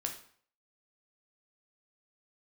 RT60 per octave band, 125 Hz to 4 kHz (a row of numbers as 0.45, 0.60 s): 0.50, 0.50, 0.50, 0.55, 0.50, 0.45 s